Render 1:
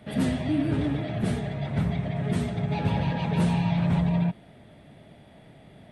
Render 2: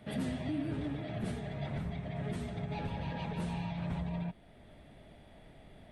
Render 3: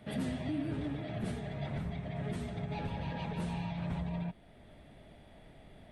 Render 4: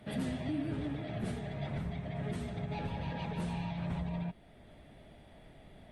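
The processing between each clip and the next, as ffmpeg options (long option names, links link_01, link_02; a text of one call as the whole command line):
ffmpeg -i in.wav -af "alimiter=limit=-22.5dB:level=0:latency=1:release=420,asubboost=boost=6.5:cutoff=50,volume=-4.5dB" out.wav
ffmpeg -i in.wav -af anull out.wav
ffmpeg -i in.wav -ar 48000 -c:a libopus -b:a 48k out.opus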